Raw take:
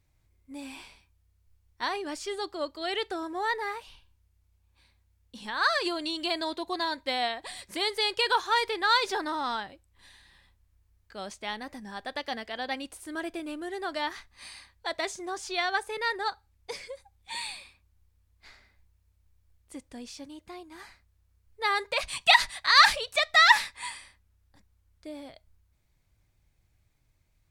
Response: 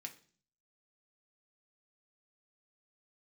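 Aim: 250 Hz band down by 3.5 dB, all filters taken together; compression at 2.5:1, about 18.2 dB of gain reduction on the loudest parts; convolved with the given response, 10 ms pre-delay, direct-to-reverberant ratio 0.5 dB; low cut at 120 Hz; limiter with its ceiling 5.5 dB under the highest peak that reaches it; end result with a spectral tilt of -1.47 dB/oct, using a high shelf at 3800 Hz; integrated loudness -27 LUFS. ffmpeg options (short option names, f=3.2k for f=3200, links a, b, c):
-filter_complex "[0:a]highpass=120,equalizer=f=250:t=o:g=-5,highshelf=f=3.8k:g=-5.5,acompressor=threshold=-42dB:ratio=2.5,alimiter=level_in=5.5dB:limit=-24dB:level=0:latency=1,volume=-5.5dB,asplit=2[a][b];[1:a]atrim=start_sample=2205,adelay=10[c];[b][c]afir=irnorm=-1:irlink=0,volume=3.5dB[d];[a][d]amix=inputs=2:normalize=0,volume=13dB"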